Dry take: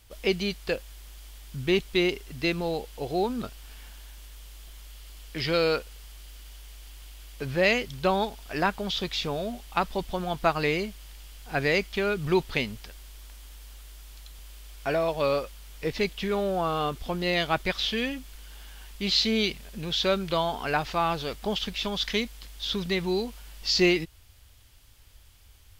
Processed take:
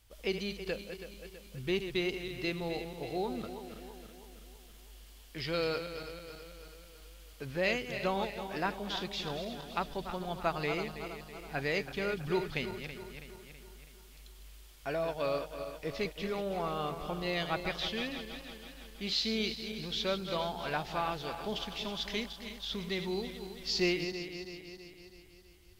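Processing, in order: backward echo that repeats 163 ms, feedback 72%, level -9 dB; trim -8.5 dB

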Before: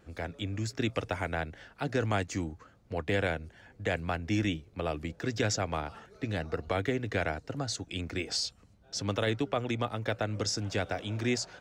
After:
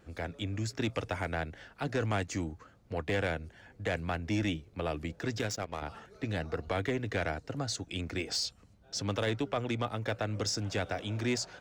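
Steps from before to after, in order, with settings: saturation -22.5 dBFS, distortion -17 dB; 5.39–5.82 s: power-law waveshaper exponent 2

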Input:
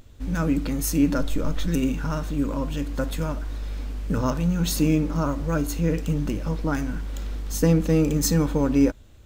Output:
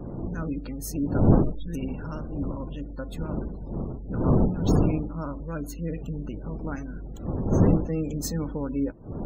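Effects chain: wind noise 260 Hz -19 dBFS; spectral gate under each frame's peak -30 dB strong; trim -8.5 dB

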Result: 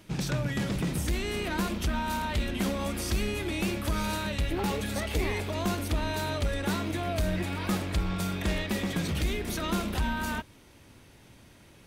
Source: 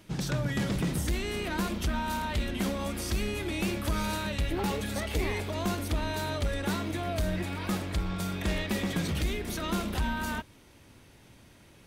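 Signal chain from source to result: rattle on loud lows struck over -36 dBFS, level -39 dBFS; gain riding 0.5 s; trim +1 dB

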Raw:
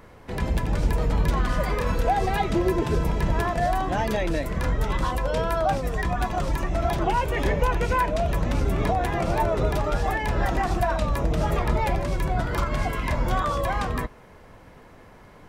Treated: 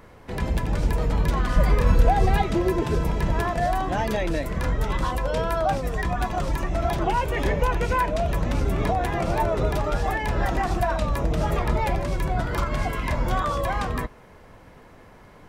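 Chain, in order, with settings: 1.56–2.42 s: bass shelf 200 Hz +9 dB

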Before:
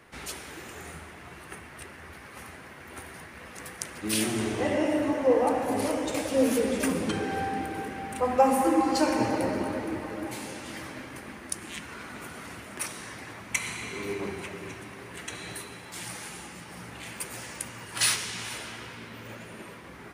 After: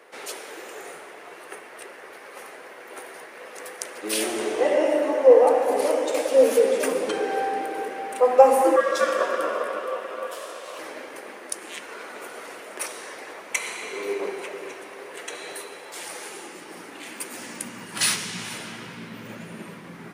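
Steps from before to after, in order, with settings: 8.76–10.79 s: ring modulator 840 Hz; high-pass sweep 470 Hz -> 170 Hz, 16.00–18.27 s; 16.81–17.41 s: bass shelf 210 Hz -8.5 dB; trim +2 dB

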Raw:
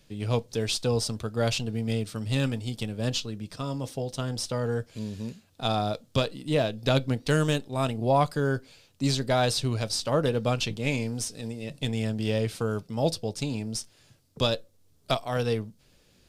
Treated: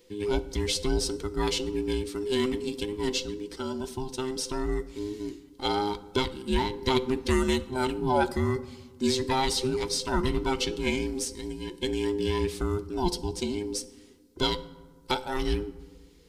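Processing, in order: every band turned upside down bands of 500 Hz; peaking EQ 1 kHz -7.5 dB 0.39 oct; reverberation RT60 1.3 s, pre-delay 3 ms, DRR 13.5 dB

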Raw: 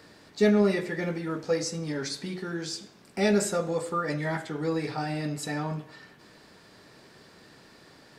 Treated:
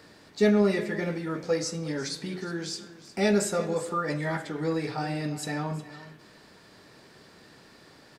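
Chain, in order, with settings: delay 360 ms -16 dB

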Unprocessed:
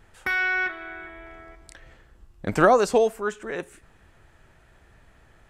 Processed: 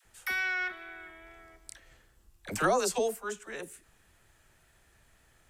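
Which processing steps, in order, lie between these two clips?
pre-emphasis filter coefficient 0.8; wow and flutter 22 cents; phase dispersion lows, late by 54 ms, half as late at 550 Hz; trim +3.5 dB

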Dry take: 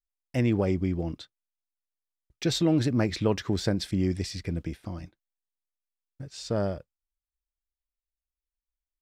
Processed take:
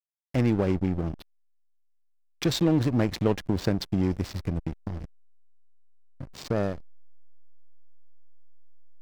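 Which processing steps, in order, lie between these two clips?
in parallel at +1.5 dB: compression 12:1, threshold -34 dBFS, peak gain reduction 15.5 dB; on the sum: hysteresis with a dead band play -24.5 dBFS

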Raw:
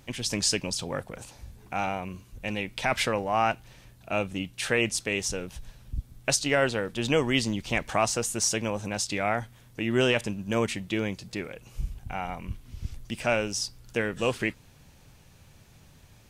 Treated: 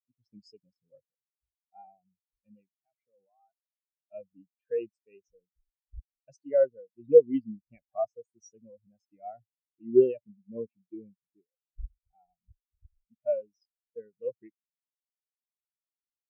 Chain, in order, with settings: 2.70–4.12 s: level held to a coarse grid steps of 17 dB; spectral contrast expander 4:1; trim +5 dB

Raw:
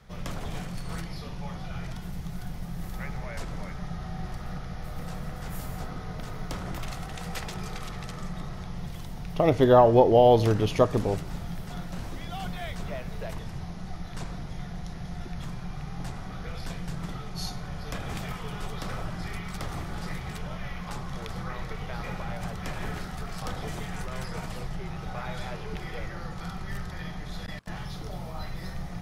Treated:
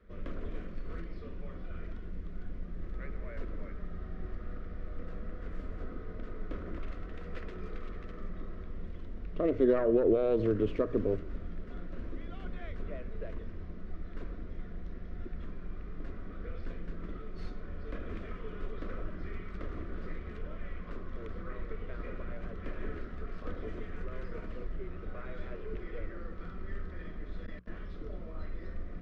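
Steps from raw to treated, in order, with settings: tracing distortion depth 0.17 ms; low-pass 1.3 kHz 12 dB/octave; hum notches 60/120/180 Hz; peak limiter -15 dBFS, peak gain reduction 9 dB; static phaser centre 340 Hz, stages 4

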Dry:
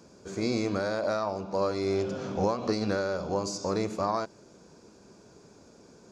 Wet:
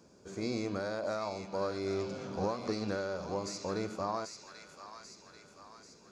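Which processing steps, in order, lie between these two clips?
feedback echo behind a high-pass 788 ms, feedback 54%, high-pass 1.5 kHz, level -5 dB; trim -6.5 dB

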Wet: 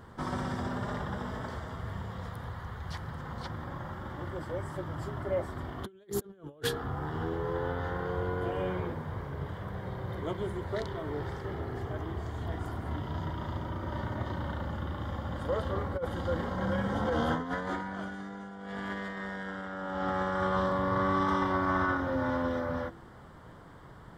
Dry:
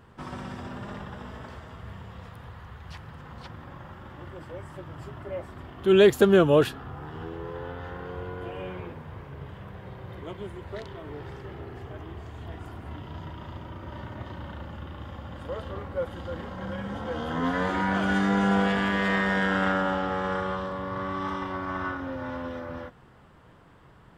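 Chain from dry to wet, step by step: peaking EQ 2.6 kHz -15 dB 0.26 oct; de-hum 67.21 Hz, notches 7; compressor with a negative ratio -31 dBFS, ratio -0.5

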